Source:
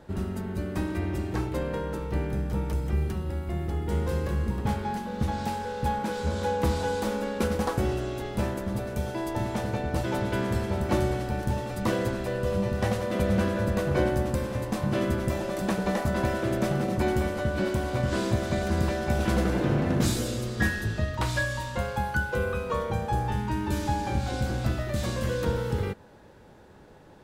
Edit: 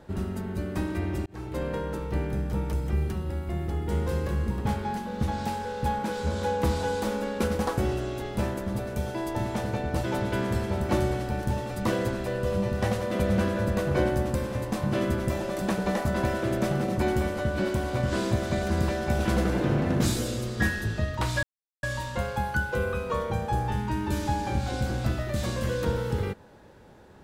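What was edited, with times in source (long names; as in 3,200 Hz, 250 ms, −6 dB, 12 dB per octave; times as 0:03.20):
0:01.26–0:01.64: fade in
0:21.43: splice in silence 0.40 s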